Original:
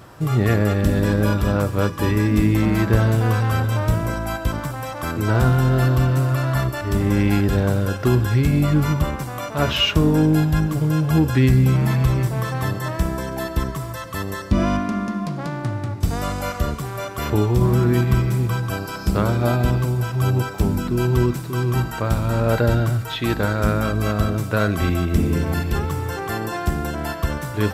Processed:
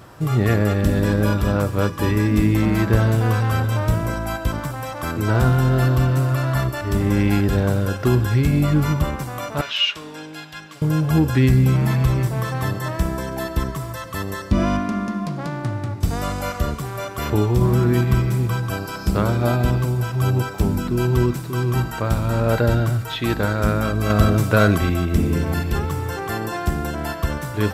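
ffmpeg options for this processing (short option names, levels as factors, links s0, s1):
-filter_complex "[0:a]asettb=1/sr,asplit=3[s0][s1][s2];[s0]atrim=end=9.614[s3];[s1]atrim=start=9.61:end=10.82,asetpts=PTS-STARTPTS,afade=t=in:d=0.004:c=qsin,afade=t=out:st=1.206:d=0.004:c=qsin,bandpass=f=3200:t=q:w=0.97[s4];[s2]atrim=start=10.816[s5];[s3][s4]acrossfade=d=0.004:c1=hsin:c2=qsin[s6];[s6][s5]acrossfade=d=0.004:c1=qsin:c2=hsin,asettb=1/sr,asplit=3[s7][s8][s9];[s7]atrim=end=24.104[s10];[s8]atrim=start=24.1:end=24.78,asetpts=PTS-STARTPTS,afade=t=in:d=0.004:c=qsin,afade=t=out:st=0.676:d=0.004:c=qsin,acontrast=36[s11];[s9]atrim=start=24.776[s12];[s10][s11]acrossfade=d=0.004:c1=hsin:c2=qsin[s13];[s13][s12]acrossfade=d=0.004:c1=qsin:c2=hsin"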